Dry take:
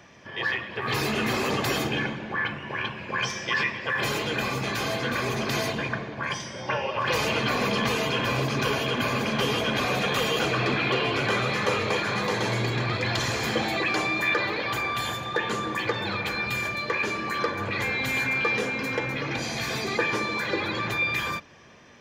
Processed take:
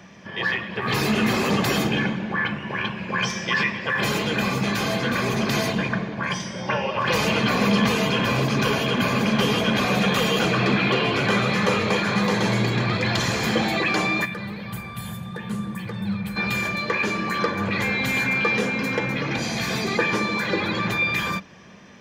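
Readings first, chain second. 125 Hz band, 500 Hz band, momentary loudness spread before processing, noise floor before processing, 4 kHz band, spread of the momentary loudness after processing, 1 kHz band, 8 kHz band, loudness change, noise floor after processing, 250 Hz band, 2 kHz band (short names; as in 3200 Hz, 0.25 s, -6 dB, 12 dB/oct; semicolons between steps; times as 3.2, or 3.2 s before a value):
+5.5 dB, +3.0 dB, 5 LU, -39 dBFS, +2.5 dB, 8 LU, +2.5 dB, +3.0 dB, +3.5 dB, -35 dBFS, +8.0 dB, +2.5 dB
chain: bell 190 Hz +12 dB 0.35 oct; spectral gain 14.25–16.36, 230–7700 Hz -13 dB; gain +3 dB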